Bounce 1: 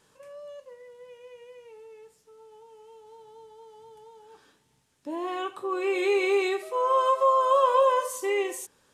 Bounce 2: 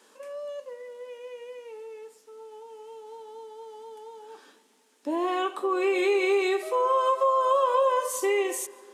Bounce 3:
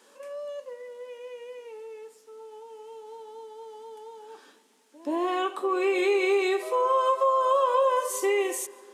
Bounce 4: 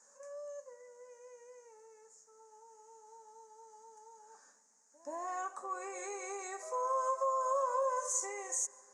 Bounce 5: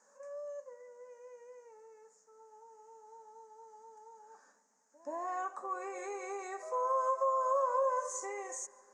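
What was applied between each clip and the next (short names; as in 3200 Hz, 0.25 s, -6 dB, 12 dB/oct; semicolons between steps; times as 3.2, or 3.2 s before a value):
elliptic high-pass 220 Hz, stop band 40 dB; compressor 2.5:1, threshold -30 dBFS, peak gain reduction 9 dB; on a send at -22 dB: reverb RT60 3.0 s, pre-delay 0.105 s; on the sum: gain +6.5 dB
pre-echo 0.129 s -22.5 dB
EQ curve 150 Hz 0 dB, 360 Hz -20 dB, 560 Hz -3 dB, 1800 Hz -4 dB, 3200 Hz -28 dB, 6700 Hz +13 dB, 14000 Hz -27 dB; gain -6 dB
LPF 2200 Hz 6 dB/oct; gain +2.5 dB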